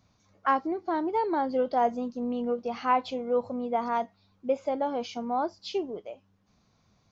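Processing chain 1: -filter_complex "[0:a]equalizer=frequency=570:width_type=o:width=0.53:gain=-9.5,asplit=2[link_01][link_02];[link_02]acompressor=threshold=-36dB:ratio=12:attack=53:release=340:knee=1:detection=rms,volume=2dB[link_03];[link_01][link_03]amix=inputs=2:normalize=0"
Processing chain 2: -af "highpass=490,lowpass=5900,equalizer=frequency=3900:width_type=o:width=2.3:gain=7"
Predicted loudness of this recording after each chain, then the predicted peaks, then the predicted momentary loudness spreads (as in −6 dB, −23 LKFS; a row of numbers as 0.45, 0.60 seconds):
−28.5, −30.0 LKFS; −11.0, −10.0 dBFS; 6, 14 LU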